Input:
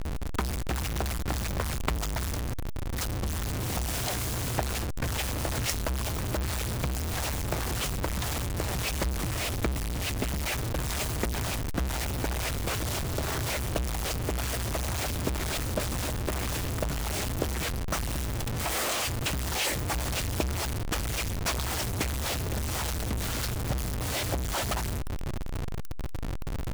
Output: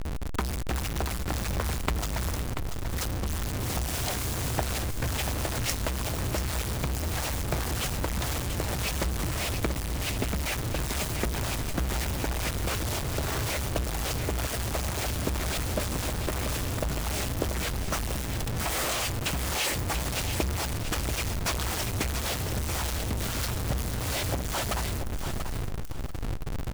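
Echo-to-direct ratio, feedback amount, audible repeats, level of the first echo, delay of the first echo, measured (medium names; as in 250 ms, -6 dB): -8.0 dB, 23%, 3, -8.0 dB, 686 ms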